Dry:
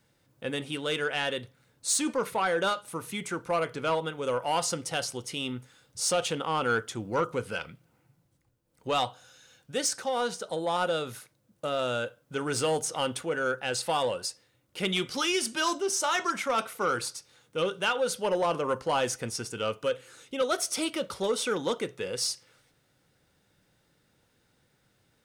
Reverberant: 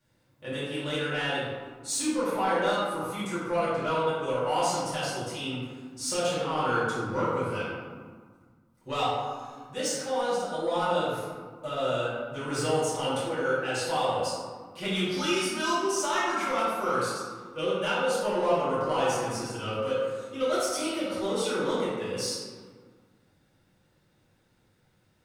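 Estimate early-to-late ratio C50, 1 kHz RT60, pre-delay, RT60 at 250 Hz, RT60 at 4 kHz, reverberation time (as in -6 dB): -2.0 dB, 1.7 s, 3 ms, 2.2 s, 0.80 s, 1.7 s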